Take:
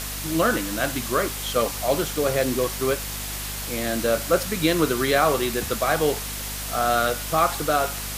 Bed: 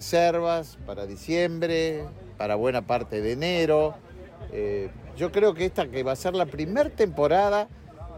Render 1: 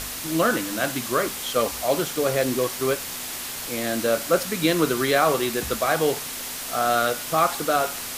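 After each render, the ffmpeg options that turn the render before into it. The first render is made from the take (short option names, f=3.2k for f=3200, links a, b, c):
-af "bandreject=f=50:t=h:w=4,bandreject=f=100:t=h:w=4,bandreject=f=150:t=h:w=4,bandreject=f=200:t=h:w=4"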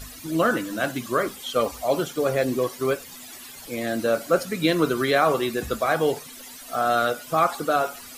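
-af "afftdn=nr=15:nf=-33"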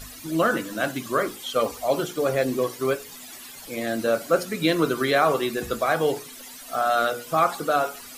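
-af "equalizer=f=66:t=o:w=1:g=-4,bandreject=f=60:t=h:w=6,bandreject=f=120:t=h:w=6,bandreject=f=180:t=h:w=6,bandreject=f=240:t=h:w=6,bandreject=f=300:t=h:w=6,bandreject=f=360:t=h:w=6,bandreject=f=420:t=h:w=6,bandreject=f=480:t=h:w=6"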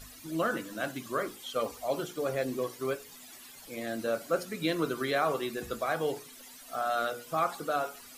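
-af "volume=-8.5dB"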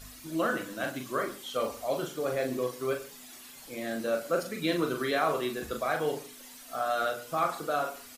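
-filter_complex "[0:a]asplit=2[a][b];[b]adelay=40,volume=-5.5dB[c];[a][c]amix=inputs=2:normalize=0,asplit=2[d][e];[e]adelay=116.6,volume=-18dB,highshelf=f=4k:g=-2.62[f];[d][f]amix=inputs=2:normalize=0"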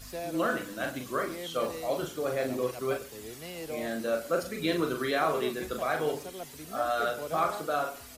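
-filter_complex "[1:a]volume=-17dB[a];[0:a][a]amix=inputs=2:normalize=0"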